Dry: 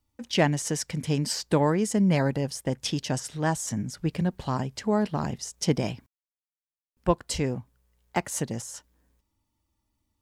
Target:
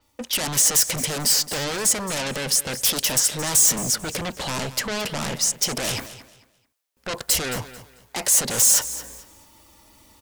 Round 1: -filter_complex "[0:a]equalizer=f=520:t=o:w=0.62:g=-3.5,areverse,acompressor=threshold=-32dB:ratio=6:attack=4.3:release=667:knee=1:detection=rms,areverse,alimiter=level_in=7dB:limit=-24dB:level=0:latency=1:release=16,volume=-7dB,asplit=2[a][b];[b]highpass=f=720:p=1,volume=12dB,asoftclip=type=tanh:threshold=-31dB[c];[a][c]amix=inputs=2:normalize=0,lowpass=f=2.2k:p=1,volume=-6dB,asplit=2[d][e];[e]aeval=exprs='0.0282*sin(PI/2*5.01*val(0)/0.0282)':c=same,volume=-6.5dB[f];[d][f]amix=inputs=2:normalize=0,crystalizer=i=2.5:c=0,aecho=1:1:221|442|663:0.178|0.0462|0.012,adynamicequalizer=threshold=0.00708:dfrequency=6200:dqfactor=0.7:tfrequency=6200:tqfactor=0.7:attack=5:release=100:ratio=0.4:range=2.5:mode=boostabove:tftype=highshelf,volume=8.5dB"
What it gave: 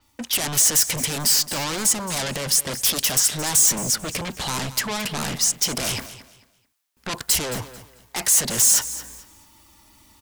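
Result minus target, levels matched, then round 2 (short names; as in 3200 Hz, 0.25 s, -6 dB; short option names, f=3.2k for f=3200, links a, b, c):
500 Hz band -2.5 dB
-filter_complex "[0:a]equalizer=f=520:t=o:w=0.62:g=6,areverse,acompressor=threshold=-32dB:ratio=6:attack=4.3:release=667:knee=1:detection=rms,areverse,alimiter=level_in=7dB:limit=-24dB:level=0:latency=1:release=16,volume=-7dB,asplit=2[a][b];[b]highpass=f=720:p=1,volume=12dB,asoftclip=type=tanh:threshold=-31dB[c];[a][c]amix=inputs=2:normalize=0,lowpass=f=2.2k:p=1,volume=-6dB,asplit=2[d][e];[e]aeval=exprs='0.0282*sin(PI/2*5.01*val(0)/0.0282)':c=same,volume=-6.5dB[f];[d][f]amix=inputs=2:normalize=0,crystalizer=i=2.5:c=0,aecho=1:1:221|442|663:0.178|0.0462|0.012,adynamicequalizer=threshold=0.00708:dfrequency=6200:dqfactor=0.7:tfrequency=6200:tqfactor=0.7:attack=5:release=100:ratio=0.4:range=2.5:mode=boostabove:tftype=highshelf,volume=8.5dB"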